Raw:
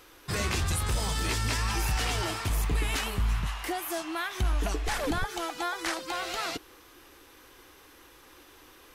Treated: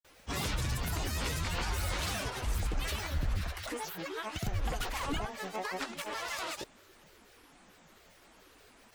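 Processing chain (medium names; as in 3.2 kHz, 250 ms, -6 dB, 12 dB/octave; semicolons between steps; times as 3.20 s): granulator, grains 27 per s, pitch spread up and down by 12 st; trim -2.5 dB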